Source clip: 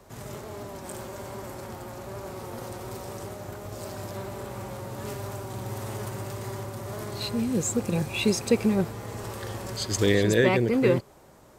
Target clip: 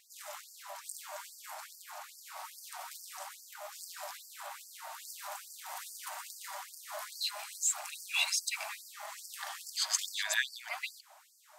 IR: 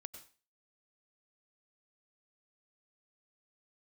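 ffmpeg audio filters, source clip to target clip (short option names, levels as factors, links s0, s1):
-af "afftfilt=real='re*gte(b*sr/1024,560*pow(4500/560,0.5+0.5*sin(2*PI*2.4*pts/sr)))':imag='im*gte(b*sr/1024,560*pow(4500/560,0.5+0.5*sin(2*PI*2.4*pts/sr)))':win_size=1024:overlap=0.75"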